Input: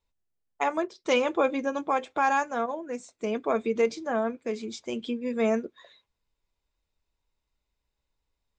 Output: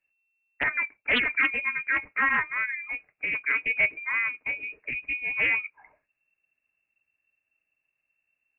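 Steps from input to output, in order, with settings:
voice inversion scrambler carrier 2,700 Hz
highs frequency-modulated by the lows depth 0.33 ms

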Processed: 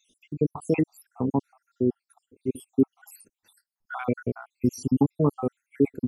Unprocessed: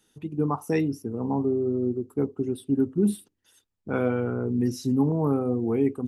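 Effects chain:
time-frequency cells dropped at random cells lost 72%
level +4 dB

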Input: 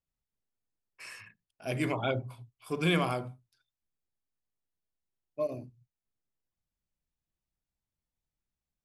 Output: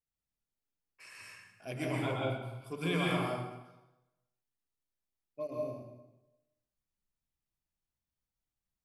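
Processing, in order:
dense smooth reverb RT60 1 s, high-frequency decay 0.85×, pre-delay 110 ms, DRR −3.5 dB
level −7.5 dB

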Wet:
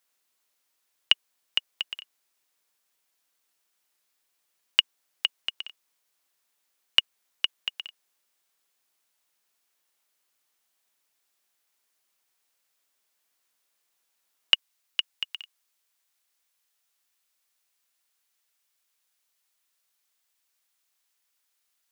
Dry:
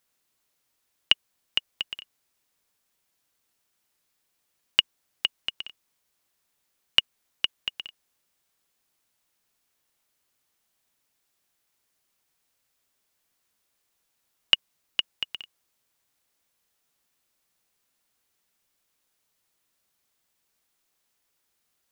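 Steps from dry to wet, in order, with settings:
high-pass filter 500 Hz 6 dB per octave, from 0:14.54 1,300 Hz

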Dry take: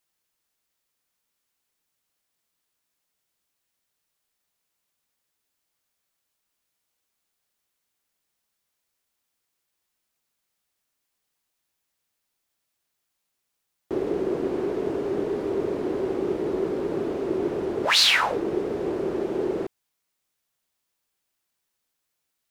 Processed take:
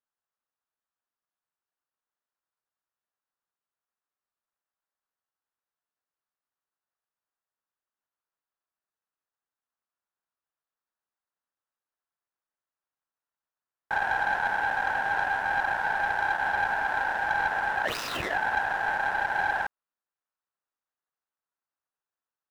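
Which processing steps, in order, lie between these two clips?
running median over 41 samples
ring modulation 1,200 Hz
leveller curve on the samples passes 1

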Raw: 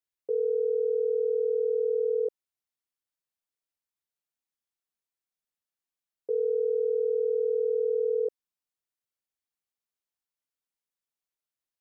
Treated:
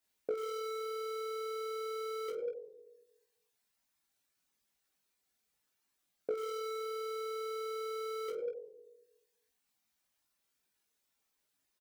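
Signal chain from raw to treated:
convolution reverb RT60 1.2 s, pre-delay 9 ms, DRR −5 dB
in parallel at −11 dB: wrap-around overflow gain 15.5 dB
on the sum: brickwall limiter −22 dBFS, peak gain reduction 9.5 dB
hard clipping −24.5 dBFS, distortion −20 dB
reverb reduction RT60 1.2 s
downward compressor 5 to 1, threshold −39 dBFS, peak gain reduction 11.5 dB
on a send: ambience of single reflections 19 ms −5.5 dB, 49 ms −10 dB
on the sum: level +4 dB

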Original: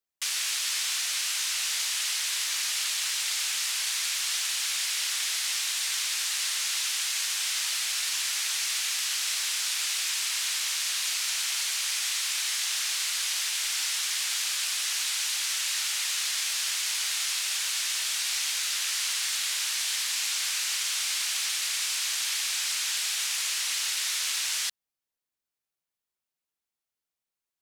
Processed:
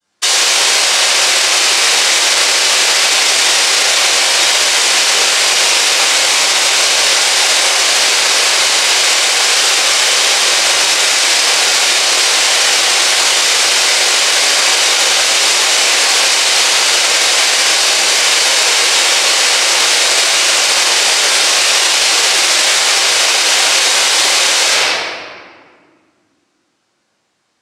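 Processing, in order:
parametric band 850 Hz +6 dB 1.2 octaves
phaser with its sweep stopped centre 680 Hz, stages 6
cochlear-implant simulation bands 3
convolution reverb RT60 1.9 s, pre-delay 3 ms, DRR −19 dB
boost into a limiter +12 dB
level −1 dB

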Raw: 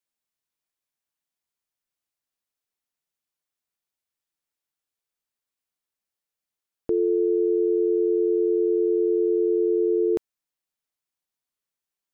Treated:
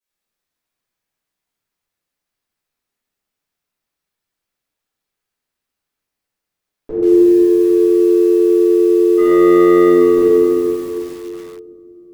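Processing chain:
0:09.17–0:09.89: leveller curve on the samples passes 2
convolution reverb RT60 2.7 s, pre-delay 3 ms, DRR −18 dB
feedback echo at a low word length 135 ms, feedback 55%, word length 4 bits, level −8.5 dB
level −7.5 dB

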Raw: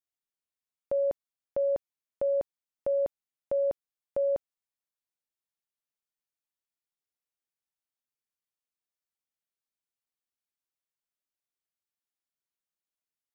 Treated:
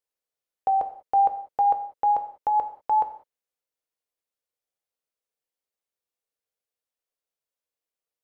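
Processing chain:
gliding playback speed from 134% → 190%
graphic EQ with 10 bands 125 Hz −4 dB, 250 Hz −3 dB, 500 Hz +10 dB
reverb whose tail is shaped and stops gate 220 ms falling, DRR 6.5 dB
level +2 dB

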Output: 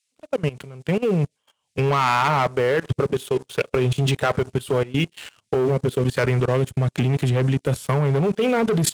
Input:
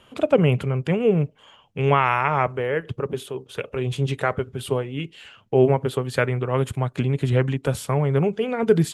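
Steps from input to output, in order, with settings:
fade in at the beginning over 2.15 s
0:05.54–0:07.75: rotating-speaker cabinet horn 1.1 Hz
noise in a band 2,000–9,700 Hz −66 dBFS
high-shelf EQ 5,500 Hz +5 dB
leveller curve on the samples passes 3
high-pass filter 54 Hz 6 dB per octave
output level in coarse steps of 19 dB

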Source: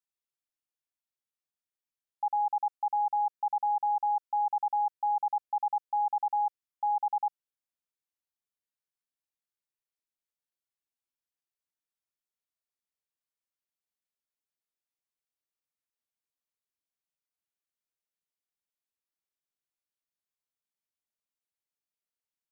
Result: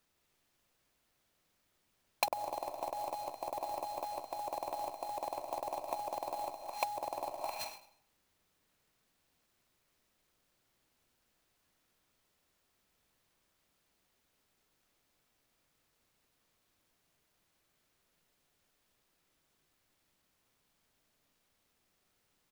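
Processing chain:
low-shelf EQ 500 Hz +8.5 dB
wave folding −34 dBFS
single-tap delay 214 ms −7 dB
on a send at −7 dB: convolution reverb RT60 0.60 s, pre-delay 110 ms
on the sum: treble cut that deepens with the level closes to 520 Hz, closed at −38.5 dBFS
converter with an unsteady clock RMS 0.031 ms
level +17 dB

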